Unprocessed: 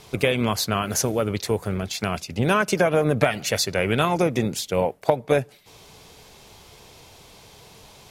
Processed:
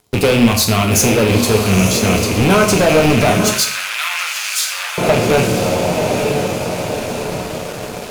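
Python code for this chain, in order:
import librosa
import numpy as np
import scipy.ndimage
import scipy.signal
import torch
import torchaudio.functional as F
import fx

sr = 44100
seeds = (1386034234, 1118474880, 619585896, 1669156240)

y = fx.rattle_buzz(x, sr, strikes_db=-30.0, level_db=-14.0)
y = fx.peak_eq(y, sr, hz=2000.0, db=-8.5, octaves=2.1)
y = fx.echo_diffused(y, sr, ms=938, feedback_pct=58, wet_db=-8)
y = fx.leveller(y, sr, passes=5)
y = fx.highpass(y, sr, hz=1300.0, slope=24, at=(3.5, 4.98))
y = fx.rev_plate(y, sr, seeds[0], rt60_s=0.64, hf_ratio=0.8, predelay_ms=0, drr_db=2.5)
y = F.gain(torch.from_numpy(y), -5.0).numpy()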